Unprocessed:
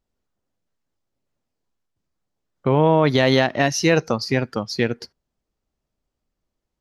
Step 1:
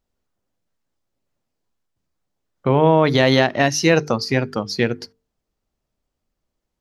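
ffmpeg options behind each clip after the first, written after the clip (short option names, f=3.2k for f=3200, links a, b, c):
-af "bandreject=f=50:t=h:w=6,bandreject=f=100:t=h:w=6,bandreject=f=150:t=h:w=6,bandreject=f=200:t=h:w=6,bandreject=f=250:t=h:w=6,bandreject=f=300:t=h:w=6,bandreject=f=350:t=h:w=6,bandreject=f=400:t=h:w=6,bandreject=f=450:t=h:w=6,volume=2dB"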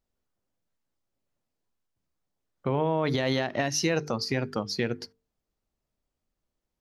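-af "alimiter=limit=-10dB:level=0:latency=1:release=95,volume=-5.5dB"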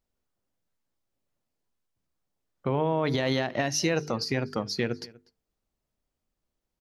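-filter_complex "[0:a]asplit=2[a][b];[b]adelay=244.9,volume=-22dB,highshelf=f=4k:g=-5.51[c];[a][c]amix=inputs=2:normalize=0"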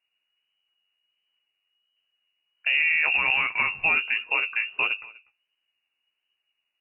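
-af "lowpass=f=2.5k:t=q:w=0.5098,lowpass=f=2.5k:t=q:w=0.6013,lowpass=f=2.5k:t=q:w=0.9,lowpass=f=2.5k:t=q:w=2.563,afreqshift=-2900,flanger=delay=8.3:depth=8:regen=26:speed=1.4:shape=sinusoidal,volume=7dB"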